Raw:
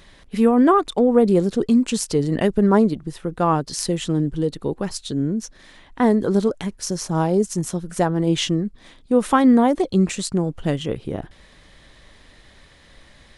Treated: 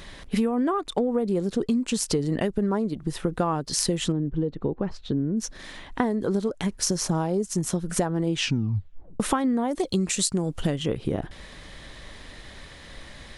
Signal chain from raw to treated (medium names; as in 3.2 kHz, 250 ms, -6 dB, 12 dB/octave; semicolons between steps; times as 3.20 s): 8.35 s: tape stop 0.85 s; 9.71–10.67 s: treble shelf 3.8 kHz +11 dB; compression 12:1, threshold -27 dBFS, peak gain reduction 17.5 dB; 4.12–5.37 s: tape spacing loss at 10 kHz 36 dB; trim +6 dB